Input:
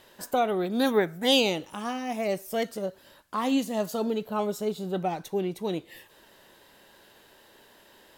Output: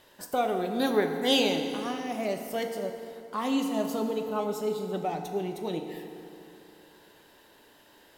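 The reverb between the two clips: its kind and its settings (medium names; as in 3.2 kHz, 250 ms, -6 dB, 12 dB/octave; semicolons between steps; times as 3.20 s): FDN reverb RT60 2.9 s, high-frequency decay 0.65×, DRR 4.5 dB; trim -3 dB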